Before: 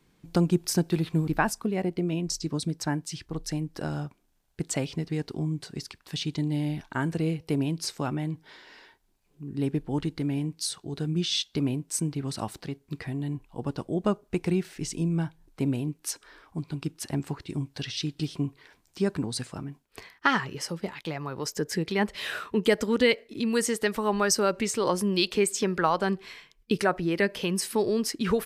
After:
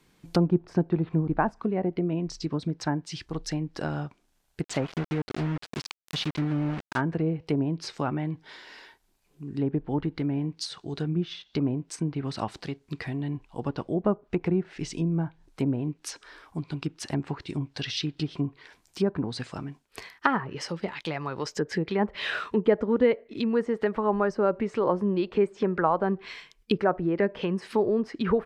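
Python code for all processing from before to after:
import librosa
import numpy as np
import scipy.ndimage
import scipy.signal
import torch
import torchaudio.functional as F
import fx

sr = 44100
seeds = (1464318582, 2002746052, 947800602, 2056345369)

y = fx.chain(x, sr, fx.lowpass(hz=8100.0, slope=12),
    fx.quant_dither(seeds[0], bits=6, dither='none'), at=(4.64, 7.01))
y = fx.env_lowpass_down(y, sr, base_hz=1000.0, full_db=-23.0)
y = fx.low_shelf(y, sr, hz=430.0, db=-4.5)
y = F.gain(torch.from_numpy(y), 4.0).numpy()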